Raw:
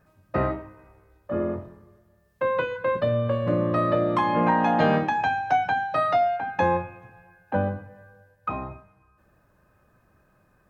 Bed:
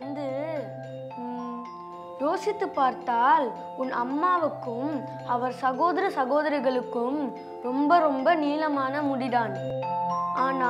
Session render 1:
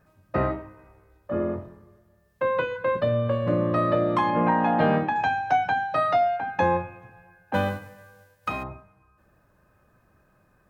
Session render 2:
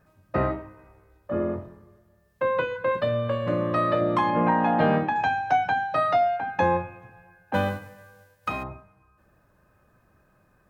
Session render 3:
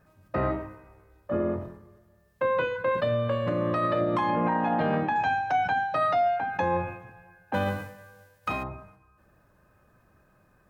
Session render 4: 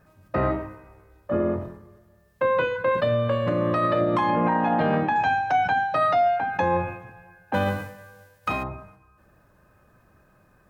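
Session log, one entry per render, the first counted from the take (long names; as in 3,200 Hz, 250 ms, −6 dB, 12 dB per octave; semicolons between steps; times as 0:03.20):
0:04.30–0:05.16: high-frequency loss of the air 210 metres; 0:07.53–0:08.62: spectral envelope flattened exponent 0.6
0:02.91–0:04.01: tilt shelving filter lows −3.5 dB, about 840 Hz
brickwall limiter −17.5 dBFS, peak gain reduction 7.5 dB; level that may fall only so fast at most 84 dB per second
level +3.5 dB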